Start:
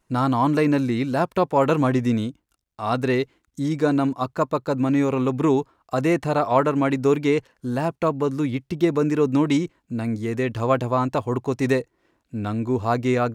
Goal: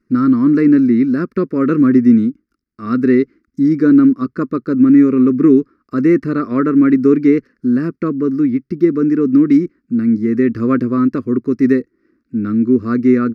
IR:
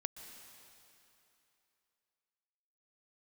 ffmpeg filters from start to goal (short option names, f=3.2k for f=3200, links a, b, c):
-af "firequalizer=gain_entry='entry(130,0);entry(230,15);entry(380,9);entry(810,-28);entry(1200,4);entry(2000,3);entry(3200,-17);entry(4900,1);entry(7100,-16);entry(11000,-12)':delay=0.05:min_phase=1,dynaudnorm=f=140:g=11:m=11.5dB,volume=-1dB"